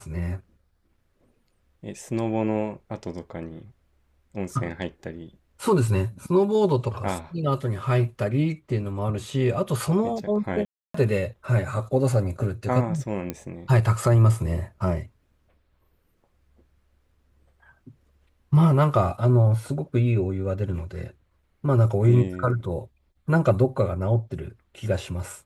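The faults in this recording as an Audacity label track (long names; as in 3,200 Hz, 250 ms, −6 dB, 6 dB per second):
10.650000	10.940000	drop-out 294 ms
13.300000	13.300000	click −15 dBFS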